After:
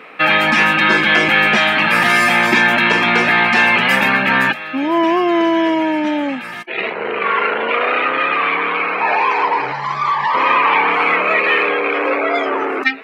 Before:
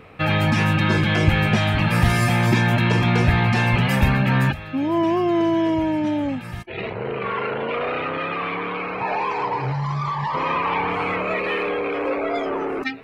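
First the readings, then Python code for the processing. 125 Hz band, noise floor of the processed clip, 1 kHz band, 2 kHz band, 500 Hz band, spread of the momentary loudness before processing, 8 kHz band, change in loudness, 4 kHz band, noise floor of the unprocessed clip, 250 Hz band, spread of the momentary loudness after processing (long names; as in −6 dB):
−12.5 dB, −28 dBFS, +8.5 dB, +12.0 dB, +5.0 dB, 8 LU, +4.5 dB, +7.0 dB, +9.5 dB, −33 dBFS, +2.0 dB, 8 LU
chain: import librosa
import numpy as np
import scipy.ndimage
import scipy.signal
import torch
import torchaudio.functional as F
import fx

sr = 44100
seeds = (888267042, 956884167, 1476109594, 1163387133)

y = scipy.signal.sosfilt(scipy.signal.butter(4, 220.0, 'highpass', fs=sr, output='sos'), x)
y = fx.peak_eq(y, sr, hz=1900.0, db=9.5, octaves=2.2)
y = y * 10.0 ** (3.0 / 20.0)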